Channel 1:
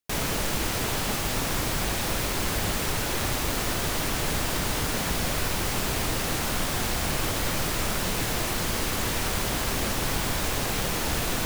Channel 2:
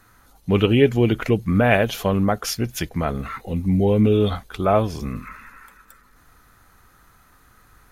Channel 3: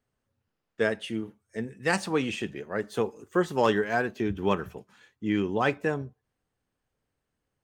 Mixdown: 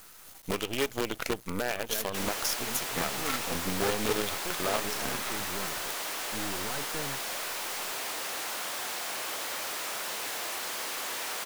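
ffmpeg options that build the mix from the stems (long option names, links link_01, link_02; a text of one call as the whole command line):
ffmpeg -i stem1.wav -i stem2.wav -i stem3.wav -filter_complex "[0:a]highpass=580,asoftclip=type=tanh:threshold=-24.5dB,adelay=2050,volume=-3.5dB[link_01];[1:a]bass=frequency=250:gain=-14,treble=frequency=4000:gain=11,acompressor=threshold=-30dB:ratio=4,volume=2.5dB[link_02];[2:a]asoftclip=type=tanh:threshold=-26dB,adelay=1100,volume=-3.5dB[link_03];[link_02][link_03]amix=inputs=2:normalize=0,acrusher=bits=5:dc=4:mix=0:aa=0.000001,alimiter=limit=-19.5dB:level=0:latency=1:release=148,volume=0dB[link_04];[link_01][link_04]amix=inputs=2:normalize=0" out.wav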